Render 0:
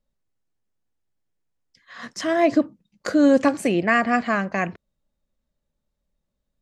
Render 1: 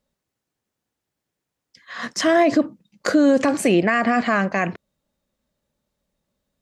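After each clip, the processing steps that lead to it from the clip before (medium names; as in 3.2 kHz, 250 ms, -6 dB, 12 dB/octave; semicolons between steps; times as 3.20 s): high-pass 140 Hz 6 dB/octave; peak limiter -15.5 dBFS, peak gain reduction 10 dB; trim +7.5 dB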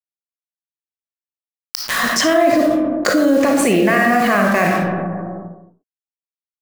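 bit crusher 6-bit; reverberation RT60 0.90 s, pre-delay 15 ms, DRR 1 dB; level flattener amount 70%; trim -3.5 dB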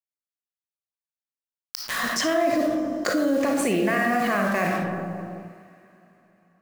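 plate-style reverb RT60 4 s, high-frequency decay 0.95×, pre-delay 105 ms, DRR 18 dB; trim -8.5 dB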